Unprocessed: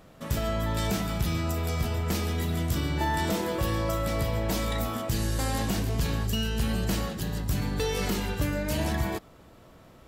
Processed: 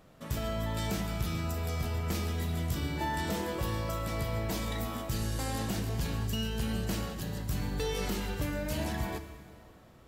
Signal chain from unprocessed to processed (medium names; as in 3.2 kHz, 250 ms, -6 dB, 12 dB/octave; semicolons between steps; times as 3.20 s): plate-style reverb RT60 2.2 s, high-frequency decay 0.9×, DRR 9.5 dB; trim -5.5 dB